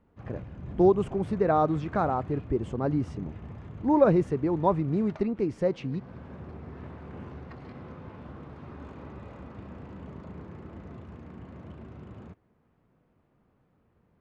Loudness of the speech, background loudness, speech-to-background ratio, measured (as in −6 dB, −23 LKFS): −26.5 LKFS, −44.0 LKFS, 17.5 dB